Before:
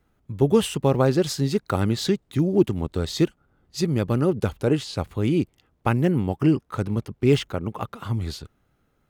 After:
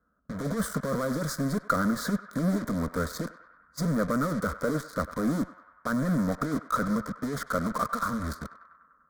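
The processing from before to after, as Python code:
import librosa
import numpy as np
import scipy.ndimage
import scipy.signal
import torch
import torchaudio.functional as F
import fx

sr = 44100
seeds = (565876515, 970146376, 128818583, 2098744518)

p1 = scipy.signal.sosfilt(scipy.signal.butter(2, 52.0, 'highpass', fs=sr, output='sos'), x)
p2 = fx.high_shelf_res(p1, sr, hz=1900.0, db=-10.0, q=3.0)
p3 = fx.over_compress(p2, sr, threshold_db=-21.0, ratio=-0.5)
p4 = fx.fuzz(p3, sr, gain_db=46.0, gate_db=-37.0)
p5 = p3 + (p4 * 10.0 ** (-8.0 / 20.0))
p6 = fx.fixed_phaser(p5, sr, hz=550.0, stages=8)
p7 = p6 + fx.echo_banded(p6, sr, ms=98, feedback_pct=73, hz=1300.0, wet_db=-13.0, dry=0)
y = p7 * 10.0 ** (-6.0 / 20.0)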